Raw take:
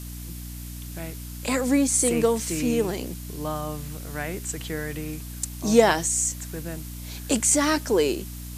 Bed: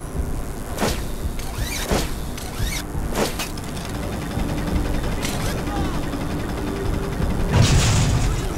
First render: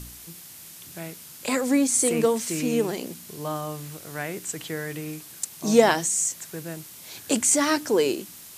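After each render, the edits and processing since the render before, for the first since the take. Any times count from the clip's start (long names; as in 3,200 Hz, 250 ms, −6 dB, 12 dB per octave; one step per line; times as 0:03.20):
hum removal 60 Hz, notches 5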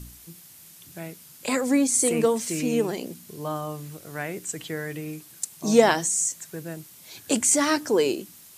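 broadband denoise 6 dB, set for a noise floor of −44 dBFS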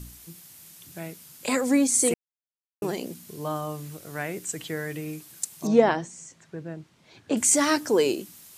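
0:02.14–0:02.82: silence
0:05.67–0:07.37: head-to-tape spacing loss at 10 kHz 27 dB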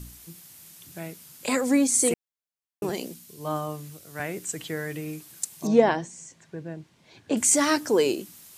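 0:02.89–0:04.20: multiband upward and downward expander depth 70%
0:05.50–0:07.34: notch filter 1,300 Hz, Q 9.7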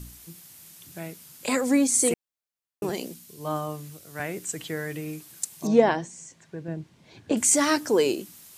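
0:06.68–0:07.32: low-shelf EQ 390 Hz +6.5 dB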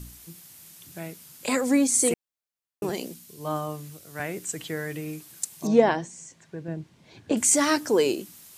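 no processing that can be heard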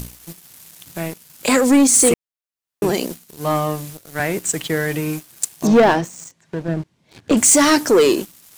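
leveller curve on the samples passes 3
upward compression, threshold −33 dBFS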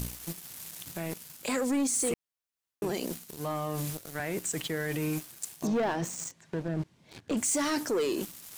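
reversed playback
downward compressor 6 to 1, threshold −24 dBFS, peak gain reduction 14 dB
reversed playback
brickwall limiter −23.5 dBFS, peak gain reduction 11 dB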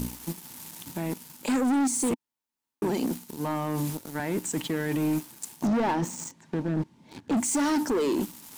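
hollow resonant body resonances 250/890 Hz, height 12 dB, ringing for 25 ms
hard clipping −22 dBFS, distortion −9 dB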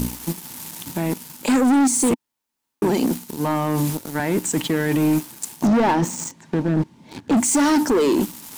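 level +8 dB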